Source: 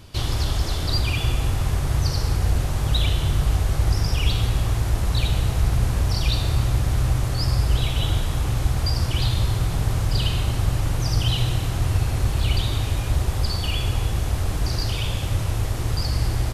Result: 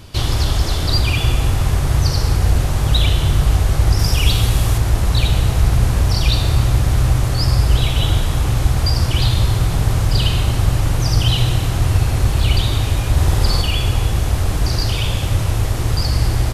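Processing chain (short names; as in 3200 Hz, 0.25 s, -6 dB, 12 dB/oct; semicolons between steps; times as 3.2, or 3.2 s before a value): 3.99–4.78 high shelf 6000 Hz +7.5 dB; 13.12–13.62 flutter echo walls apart 8.5 m, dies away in 0.77 s; gain +6 dB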